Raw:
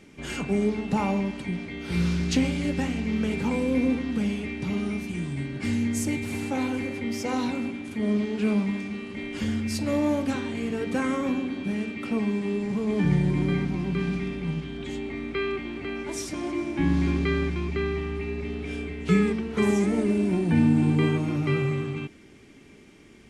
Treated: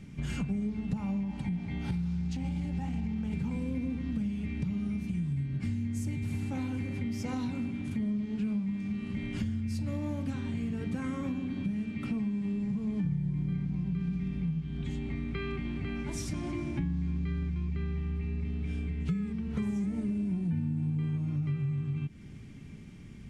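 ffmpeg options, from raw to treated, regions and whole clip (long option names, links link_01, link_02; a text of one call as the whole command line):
ffmpeg -i in.wav -filter_complex "[0:a]asettb=1/sr,asplit=3[link_01][link_02][link_03];[link_01]atrim=end=1.234[link_04];[link_02]atrim=start=1.23:end=3.33,asetpts=PTS-STARTPTS,afade=type=in:duration=0.004:curve=qsin,afade=type=out:start_time=2.096:duration=0.004:curve=qsin,acompressor=threshold=-26dB:ratio=6:attack=3.2:release=140:knee=1:detection=peak,equalizer=frequency=820:width=4.5:gain=14[link_05];[link_03]atrim=start=3.326[link_06];[link_04][link_05]acrossfade=duration=0.004:curve1=hsin:curve2=qsin[link_07];[link_07][link_06]acrossfade=duration=0.004:curve1=qsin:curve2=hsin,lowshelf=frequency=240:width_type=q:width=1.5:gain=13.5,acompressor=threshold=-26dB:ratio=6,volume=-4.5dB" out.wav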